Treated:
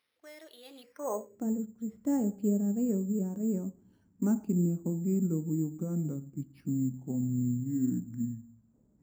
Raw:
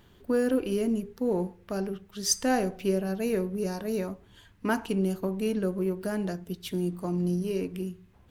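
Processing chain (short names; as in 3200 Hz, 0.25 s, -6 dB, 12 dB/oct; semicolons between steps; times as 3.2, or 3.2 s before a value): speed glide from 126% -> 58%; band-pass sweep 6200 Hz -> 220 Hz, 0.6–1.47; careless resampling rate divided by 6×, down filtered, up hold; gain +3.5 dB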